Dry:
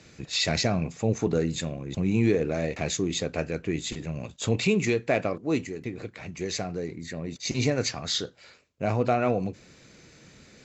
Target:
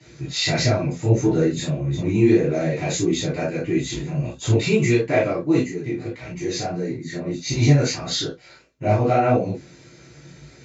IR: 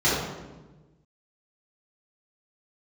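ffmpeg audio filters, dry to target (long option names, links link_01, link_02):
-filter_complex "[0:a]flanger=delay=15.5:depth=7.8:speed=1.6[link_01];[1:a]atrim=start_sample=2205,atrim=end_sample=3087[link_02];[link_01][link_02]afir=irnorm=-1:irlink=0,volume=-7.5dB"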